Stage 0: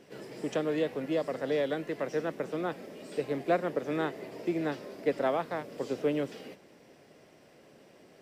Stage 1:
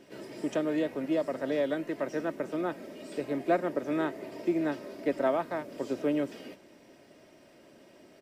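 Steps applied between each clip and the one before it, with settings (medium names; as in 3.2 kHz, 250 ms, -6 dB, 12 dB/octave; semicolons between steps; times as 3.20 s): peaking EQ 170 Hz +2.5 dB 0.77 oct; comb 3.2 ms, depth 44%; dynamic bell 3.7 kHz, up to -4 dB, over -51 dBFS, Q 1.1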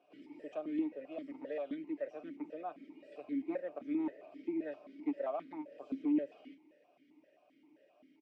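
comb 6.7 ms, depth 40%; one-sided clip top -20.5 dBFS; stepped vowel filter 7.6 Hz; trim -2 dB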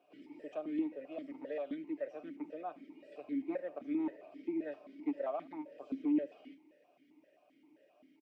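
delay 78 ms -23.5 dB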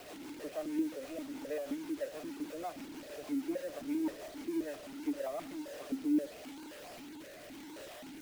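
jump at every zero crossing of -43.5 dBFS; rotary cabinet horn 6.3 Hz, later 0.9 Hz, at 5.00 s; bit crusher 9-bit; trim +1 dB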